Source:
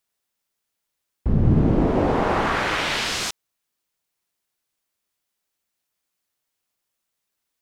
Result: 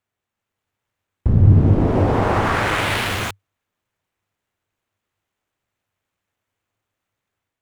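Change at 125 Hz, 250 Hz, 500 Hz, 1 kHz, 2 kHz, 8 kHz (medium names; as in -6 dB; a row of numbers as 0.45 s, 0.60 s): +7.5 dB, +1.5 dB, +2.0 dB, +2.5 dB, +2.5 dB, -2.5 dB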